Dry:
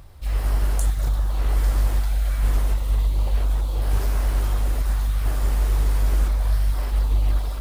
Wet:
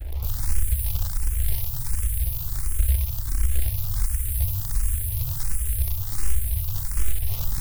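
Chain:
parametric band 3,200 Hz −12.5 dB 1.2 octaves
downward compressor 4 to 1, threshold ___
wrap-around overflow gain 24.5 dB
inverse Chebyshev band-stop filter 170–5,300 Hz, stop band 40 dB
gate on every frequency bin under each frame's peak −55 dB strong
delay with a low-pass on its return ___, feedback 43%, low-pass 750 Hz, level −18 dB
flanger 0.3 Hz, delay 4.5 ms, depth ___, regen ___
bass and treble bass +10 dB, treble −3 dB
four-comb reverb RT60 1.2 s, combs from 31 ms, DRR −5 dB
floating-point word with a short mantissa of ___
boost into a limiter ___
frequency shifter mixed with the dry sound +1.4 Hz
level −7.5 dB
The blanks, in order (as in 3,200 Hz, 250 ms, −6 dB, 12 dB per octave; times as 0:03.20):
−20 dBFS, 654 ms, 3.8 ms, +86%, 2 bits, +17.5 dB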